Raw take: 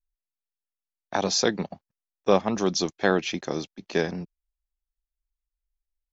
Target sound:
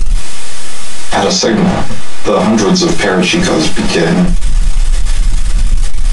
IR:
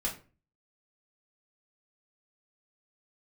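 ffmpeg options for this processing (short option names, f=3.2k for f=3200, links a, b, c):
-filter_complex "[0:a]aeval=exprs='val(0)+0.5*0.0531*sgn(val(0))':c=same,asettb=1/sr,asplit=3[a][b][c];[a]atrim=end=1.374[d];[b]atrim=start=1.37:end=2.29,asetpts=PTS-STARTPTS,afade=t=in:d=0.004:c=qsin,afade=t=out:st=0.916:d=0.004:c=qsin,highshelf=f=6k:g=-8.5[e];[c]atrim=start=2.286[f];[d][e]acrossfade=d=0.004:c1=hsin:c2=qsin[g];[g][f]acrossfade=d=0.004:c1=qsin:c2=hsin[h];[1:a]atrim=start_sample=2205,afade=t=out:st=0.15:d=0.01,atrim=end_sample=7056[i];[h][i]afir=irnorm=-1:irlink=0,aresample=22050,aresample=44100,alimiter=level_in=16dB:limit=-1dB:release=50:level=0:latency=1,volume=-1dB"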